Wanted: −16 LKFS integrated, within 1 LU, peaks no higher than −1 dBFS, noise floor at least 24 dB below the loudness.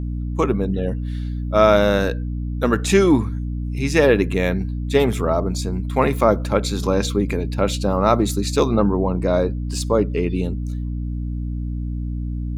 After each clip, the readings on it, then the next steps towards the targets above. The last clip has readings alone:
mains hum 60 Hz; hum harmonics up to 300 Hz; level of the hum −23 dBFS; integrated loudness −20.5 LKFS; sample peak −2.0 dBFS; target loudness −16.0 LKFS
→ mains-hum notches 60/120/180/240/300 Hz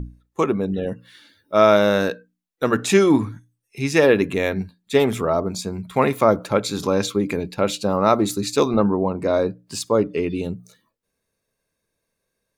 mains hum none found; integrated loudness −20.5 LKFS; sample peak −2.5 dBFS; target loudness −16.0 LKFS
→ level +4.5 dB
brickwall limiter −1 dBFS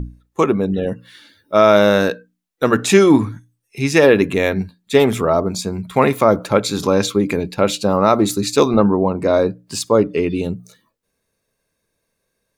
integrated loudness −16.5 LKFS; sample peak −1.0 dBFS; background noise floor −74 dBFS

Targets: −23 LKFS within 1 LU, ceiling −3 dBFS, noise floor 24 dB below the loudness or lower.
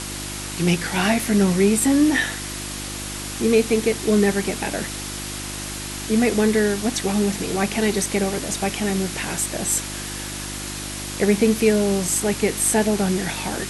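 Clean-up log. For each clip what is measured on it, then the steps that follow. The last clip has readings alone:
mains hum 50 Hz; hum harmonics up to 350 Hz; level of the hum −33 dBFS; background noise floor −31 dBFS; target noise floor −46 dBFS; integrated loudness −21.5 LKFS; sample peak −5.5 dBFS; target loudness −23.0 LKFS
→ hum removal 50 Hz, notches 7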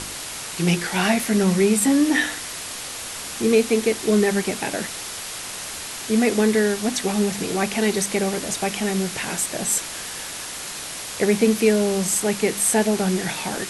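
mains hum none found; background noise floor −33 dBFS; target noise floor −46 dBFS
→ broadband denoise 13 dB, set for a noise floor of −33 dBFS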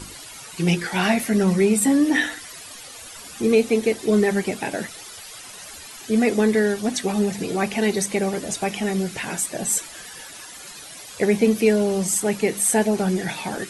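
background noise floor −40 dBFS; target noise floor −46 dBFS
→ broadband denoise 6 dB, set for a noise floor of −40 dBFS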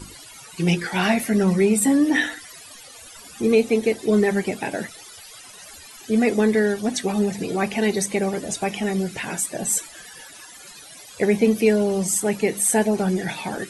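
background noise floor −43 dBFS; target noise floor −46 dBFS
→ broadband denoise 6 dB, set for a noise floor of −43 dBFS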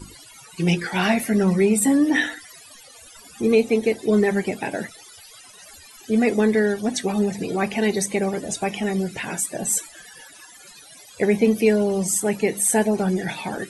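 background noise floor −46 dBFS; integrated loudness −21.5 LKFS; sample peak −6.0 dBFS; target loudness −23.0 LKFS
→ level −1.5 dB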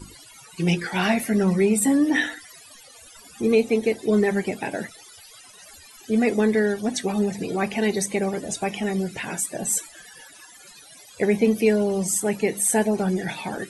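integrated loudness −23.0 LKFS; sample peak −7.5 dBFS; background noise floor −48 dBFS

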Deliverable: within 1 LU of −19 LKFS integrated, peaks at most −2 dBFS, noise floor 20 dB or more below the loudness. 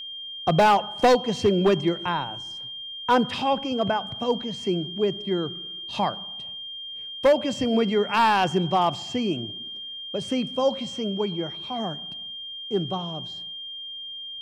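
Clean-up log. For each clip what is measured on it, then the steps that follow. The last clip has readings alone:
share of clipped samples 0.5%; peaks flattened at −12.5 dBFS; interfering tone 3,200 Hz; level of the tone −34 dBFS; integrated loudness −25.5 LKFS; sample peak −12.5 dBFS; target loudness −19.0 LKFS
→ clipped peaks rebuilt −12.5 dBFS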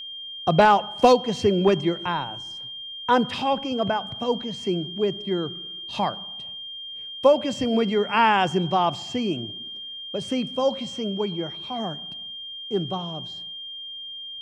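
share of clipped samples 0.0%; interfering tone 3,200 Hz; level of the tone −34 dBFS
→ notch filter 3,200 Hz, Q 30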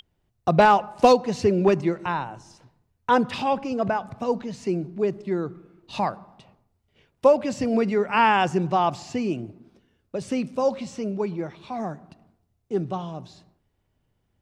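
interfering tone none found; integrated loudness −23.5 LKFS; sample peak −4.0 dBFS; target loudness −19.0 LKFS
→ level +4.5 dB
brickwall limiter −2 dBFS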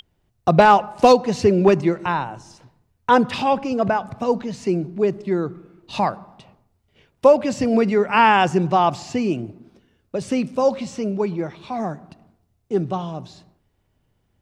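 integrated loudness −19.5 LKFS; sample peak −2.0 dBFS; background noise floor −68 dBFS

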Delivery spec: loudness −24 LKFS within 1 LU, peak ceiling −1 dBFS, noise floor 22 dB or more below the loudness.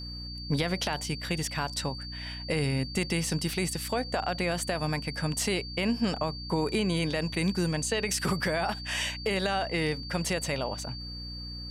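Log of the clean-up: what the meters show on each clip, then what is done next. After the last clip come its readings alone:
mains hum 60 Hz; hum harmonics up to 300 Hz; level of the hum −39 dBFS; interfering tone 4,600 Hz; level of the tone −40 dBFS; integrated loudness −30.0 LKFS; sample peak −16.0 dBFS; target loudness −24.0 LKFS
→ mains-hum notches 60/120/180/240/300 Hz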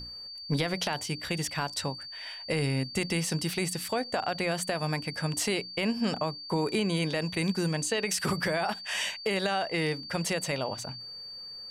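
mains hum none found; interfering tone 4,600 Hz; level of the tone −40 dBFS
→ notch filter 4,600 Hz, Q 30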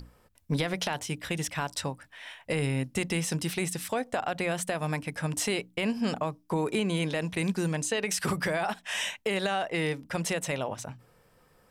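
interfering tone none found; integrated loudness −30.5 LKFS; sample peak −16.5 dBFS; target loudness −24.0 LKFS
→ level +6.5 dB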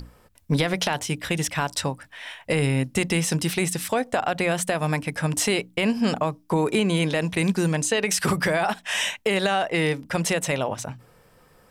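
integrated loudness −24.0 LKFS; sample peak −10.0 dBFS; background noise floor −57 dBFS

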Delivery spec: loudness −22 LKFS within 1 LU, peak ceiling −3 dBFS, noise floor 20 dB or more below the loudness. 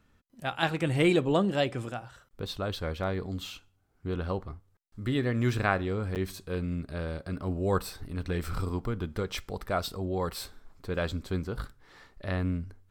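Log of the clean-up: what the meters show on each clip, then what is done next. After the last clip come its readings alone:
number of dropouts 1; longest dropout 8.6 ms; integrated loudness −31.5 LKFS; sample peak −10.5 dBFS; target loudness −22.0 LKFS
→ repair the gap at 0:06.15, 8.6 ms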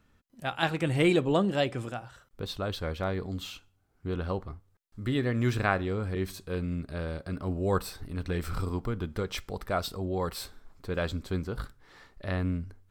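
number of dropouts 0; integrated loudness −31.5 LKFS; sample peak −10.5 dBFS; target loudness −22.0 LKFS
→ level +9.5 dB
brickwall limiter −3 dBFS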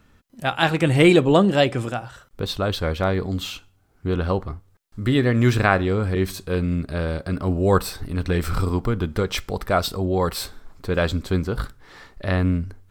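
integrated loudness −22.0 LKFS; sample peak −3.0 dBFS; background noise floor −59 dBFS

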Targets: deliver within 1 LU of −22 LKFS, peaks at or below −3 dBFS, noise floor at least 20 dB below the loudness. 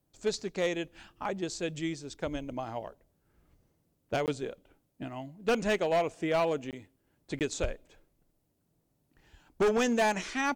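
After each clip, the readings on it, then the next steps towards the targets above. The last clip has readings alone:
share of clipped samples 1.4%; peaks flattened at −22.0 dBFS; number of dropouts 3; longest dropout 18 ms; integrated loudness −32.0 LKFS; sample peak −22.0 dBFS; target loudness −22.0 LKFS
→ clipped peaks rebuilt −22 dBFS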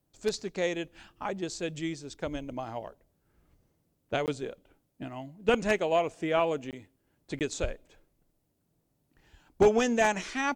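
share of clipped samples 0.0%; number of dropouts 3; longest dropout 18 ms
→ repair the gap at 0:04.26/0:06.71/0:07.39, 18 ms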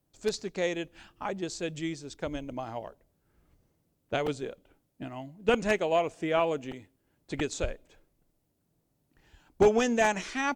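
number of dropouts 0; integrated loudness −30.5 LKFS; sample peak −13.0 dBFS; target loudness −22.0 LKFS
→ level +8.5 dB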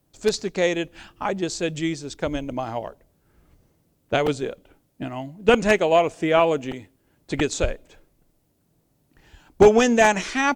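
integrated loudness −22.0 LKFS; sample peak −4.5 dBFS; background noise floor −67 dBFS

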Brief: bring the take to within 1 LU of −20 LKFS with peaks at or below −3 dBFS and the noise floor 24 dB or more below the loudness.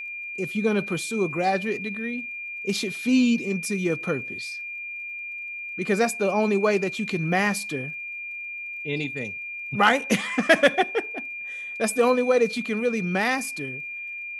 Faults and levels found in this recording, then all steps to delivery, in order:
crackle rate 34 per second; interfering tone 2,400 Hz; level of the tone −32 dBFS; integrated loudness −25.0 LKFS; sample peak −4.5 dBFS; target loudness −20.0 LKFS
→ click removal
notch filter 2,400 Hz, Q 30
level +5 dB
brickwall limiter −3 dBFS

